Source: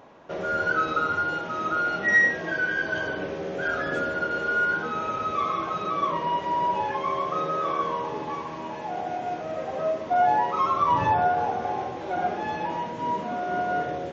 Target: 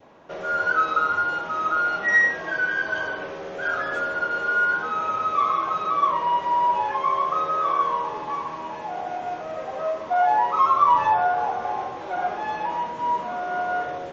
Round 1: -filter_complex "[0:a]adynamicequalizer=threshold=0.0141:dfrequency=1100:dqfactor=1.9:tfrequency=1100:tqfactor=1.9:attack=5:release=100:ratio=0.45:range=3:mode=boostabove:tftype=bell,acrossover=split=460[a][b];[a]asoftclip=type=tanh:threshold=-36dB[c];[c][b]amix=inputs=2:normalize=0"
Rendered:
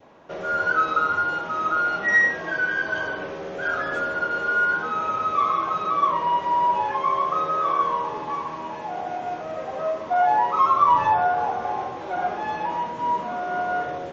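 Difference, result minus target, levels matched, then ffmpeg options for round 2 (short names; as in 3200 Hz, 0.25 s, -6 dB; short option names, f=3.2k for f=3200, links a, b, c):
soft clip: distortion -4 dB
-filter_complex "[0:a]adynamicequalizer=threshold=0.0141:dfrequency=1100:dqfactor=1.9:tfrequency=1100:tqfactor=1.9:attack=5:release=100:ratio=0.45:range=3:mode=boostabove:tftype=bell,acrossover=split=460[a][b];[a]asoftclip=type=tanh:threshold=-42dB[c];[c][b]amix=inputs=2:normalize=0"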